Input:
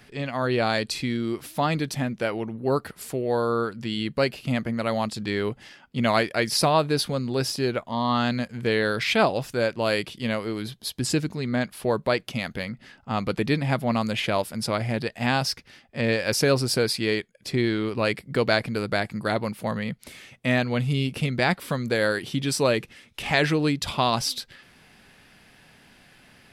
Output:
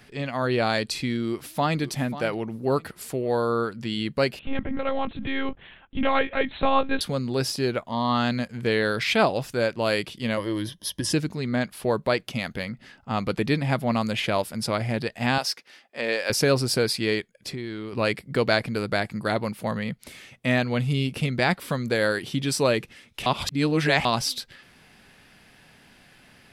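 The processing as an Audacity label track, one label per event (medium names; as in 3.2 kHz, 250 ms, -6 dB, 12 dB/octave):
1.280000	1.800000	echo throw 540 ms, feedback 25%, level -13.5 dB
4.390000	7.010000	monotone LPC vocoder at 8 kHz 270 Hz
10.370000	11.130000	rippled EQ curve crests per octave 1.2, crest to trough 11 dB
15.380000	16.300000	high-pass 410 Hz
17.490000	17.930000	compression 3:1, threshold -32 dBFS
23.260000	24.050000	reverse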